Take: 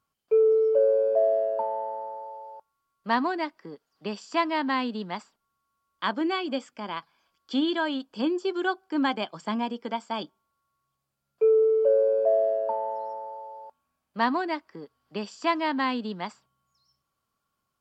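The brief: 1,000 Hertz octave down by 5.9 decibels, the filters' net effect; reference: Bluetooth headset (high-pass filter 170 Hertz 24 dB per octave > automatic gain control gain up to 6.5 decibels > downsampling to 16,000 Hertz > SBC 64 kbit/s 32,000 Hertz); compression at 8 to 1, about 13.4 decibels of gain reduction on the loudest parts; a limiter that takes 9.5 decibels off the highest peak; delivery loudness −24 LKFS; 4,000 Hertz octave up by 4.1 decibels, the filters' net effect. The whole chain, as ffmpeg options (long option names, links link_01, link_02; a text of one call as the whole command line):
ffmpeg -i in.wav -af "equalizer=frequency=1000:width_type=o:gain=-7.5,equalizer=frequency=4000:width_type=o:gain=6,acompressor=threshold=-33dB:ratio=8,alimiter=level_in=4.5dB:limit=-24dB:level=0:latency=1,volume=-4.5dB,highpass=frequency=170:width=0.5412,highpass=frequency=170:width=1.3066,dynaudnorm=maxgain=6.5dB,aresample=16000,aresample=44100,volume=13.5dB" -ar 32000 -c:a sbc -b:a 64k out.sbc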